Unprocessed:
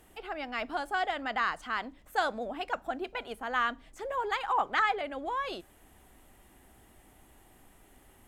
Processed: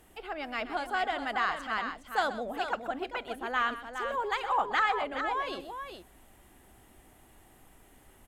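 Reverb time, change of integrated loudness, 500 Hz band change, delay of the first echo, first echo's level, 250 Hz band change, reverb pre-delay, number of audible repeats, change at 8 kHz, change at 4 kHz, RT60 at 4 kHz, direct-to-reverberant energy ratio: no reverb, +0.5 dB, +1.0 dB, 128 ms, -14.0 dB, +1.0 dB, no reverb, 2, no reading, +1.0 dB, no reverb, no reverb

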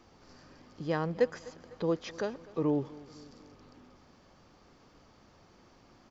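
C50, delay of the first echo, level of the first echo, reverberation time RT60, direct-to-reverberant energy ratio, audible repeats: no reverb, 251 ms, -21.0 dB, no reverb, no reverb, 3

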